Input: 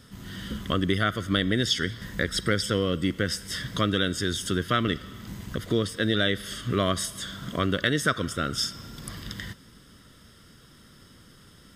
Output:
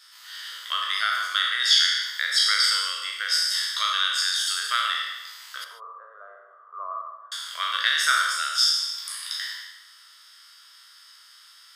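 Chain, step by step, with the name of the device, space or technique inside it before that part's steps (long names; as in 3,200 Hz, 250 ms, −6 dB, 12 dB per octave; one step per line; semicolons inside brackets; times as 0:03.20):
peak hold with a decay on every bin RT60 1.13 s
0:05.64–0:07.32: Chebyshev band-pass filter 410–1,200 Hz, order 4
headphones lying on a table (high-pass filter 1,100 Hz 24 dB per octave; parametric band 4,600 Hz +8 dB 0.5 octaves)
reverb whose tail is shaped and stops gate 170 ms flat, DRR 7.5 dB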